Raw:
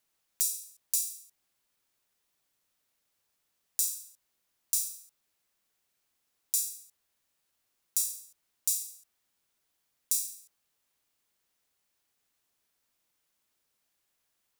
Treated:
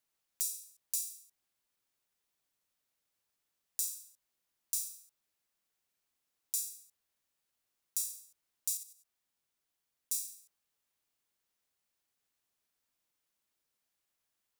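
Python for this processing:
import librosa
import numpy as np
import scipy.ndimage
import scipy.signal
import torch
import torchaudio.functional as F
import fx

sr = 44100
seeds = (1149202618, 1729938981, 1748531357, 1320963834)

y = fx.level_steps(x, sr, step_db=10, at=(8.77, 10.12))
y = F.gain(torch.from_numpy(y), -6.0).numpy()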